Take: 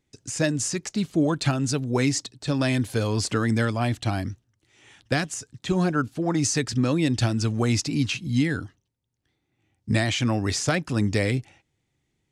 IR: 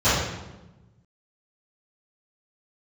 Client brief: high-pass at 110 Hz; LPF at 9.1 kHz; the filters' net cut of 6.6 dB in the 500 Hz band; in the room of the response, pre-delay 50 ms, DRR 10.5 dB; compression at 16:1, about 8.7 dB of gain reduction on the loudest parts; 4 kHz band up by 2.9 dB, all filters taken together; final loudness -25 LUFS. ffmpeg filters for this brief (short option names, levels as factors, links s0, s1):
-filter_complex "[0:a]highpass=110,lowpass=9100,equalizer=f=500:t=o:g=-9,equalizer=f=4000:t=o:g=4,acompressor=threshold=0.0398:ratio=16,asplit=2[s0][s1];[1:a]atrim=start_sample=2205,adelay=50[s2];[s1][s2]afir=irnorm=-1:irlink=0,volume=0.0282[s3];[s0][s3]amix=inputs=2:normalize=0,volume=2.24"